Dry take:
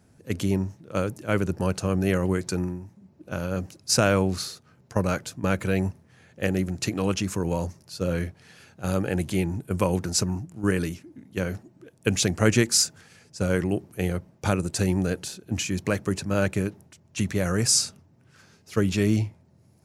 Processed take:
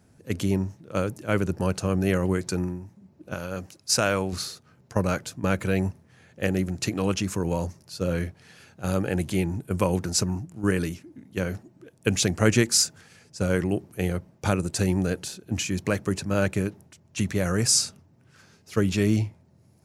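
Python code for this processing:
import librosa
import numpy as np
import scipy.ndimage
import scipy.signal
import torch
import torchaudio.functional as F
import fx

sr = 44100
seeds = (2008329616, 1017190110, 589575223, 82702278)

y = fx.low_shelf(x, sr, hz=460.0, db=-7.0, at=(3.34, 4.33))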